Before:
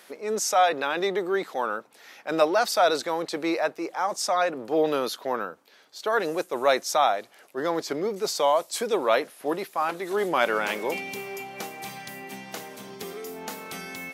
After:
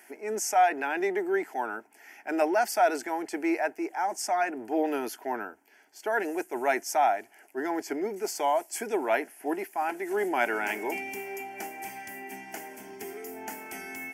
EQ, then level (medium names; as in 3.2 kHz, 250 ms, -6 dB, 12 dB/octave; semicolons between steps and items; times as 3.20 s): static phaser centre 780 Hz, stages 8; 0.0 dB